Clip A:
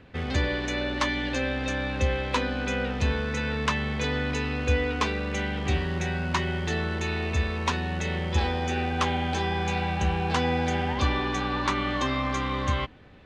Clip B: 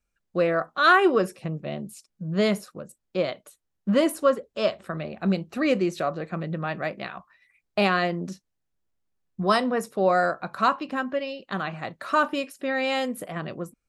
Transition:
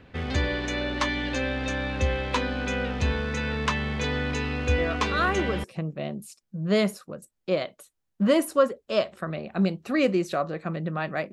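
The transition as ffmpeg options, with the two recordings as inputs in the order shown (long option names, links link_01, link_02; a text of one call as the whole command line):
ffmpeg -i cue0.wav -i cue1.wav -filter_complex "[1:a]asplit=2[link_01][link_02];[0:a]apad=whole_dur=11.32,atrim=end=11.32,atrim=end=5.642[link_03];[link_02]atrim=start=1.308:end=6.99[link_04];[link_01]atrim=start=0.45:end=1.31,asetpts=PTS-STARTPTS,volume=-8dB,afade=type=in:duration=0.004:curve=hsin,afade=type=out:start_time=0.856:duration=0.004:curve=hsin,adelay=4780[link_05];[link_03][link_04]acrossfade=duration=0.004:curve1=hsin:curve2=hsin[link_06];[link_06][link_05]amix=inputs=2:normalize=0" out.wav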